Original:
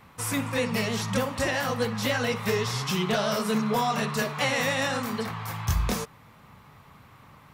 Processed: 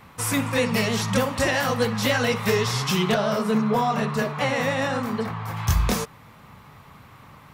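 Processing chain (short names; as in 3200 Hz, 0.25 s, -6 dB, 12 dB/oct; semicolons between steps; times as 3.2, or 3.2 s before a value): 3.14–5.57 high shelf 2300 Hz -10.5 dB; gain +4.5 dB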